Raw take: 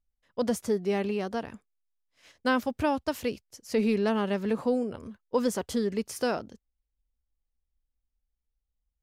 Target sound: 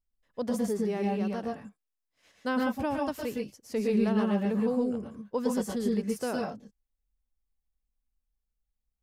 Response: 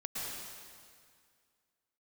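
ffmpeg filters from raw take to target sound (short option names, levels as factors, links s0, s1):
-filter_complex "[0:a]equalizer=f=3500:t=o:w=2.8:g=-3.5[s0];[1:a]atrim=start_sample=2205,atrim=end_sample=6615[s1];[s0][s1]afir=irnorm=-1:irlink=0"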